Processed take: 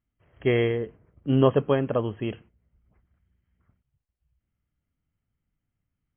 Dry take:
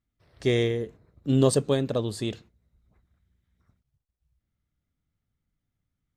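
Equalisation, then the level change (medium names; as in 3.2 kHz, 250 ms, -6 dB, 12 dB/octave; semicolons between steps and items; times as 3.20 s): brick-wall FIR low-pass 3.3 kHz; dynamic bell 1.1 kHz, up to +7 dB, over -40 dBFS, Q 0.93; 0.0 dB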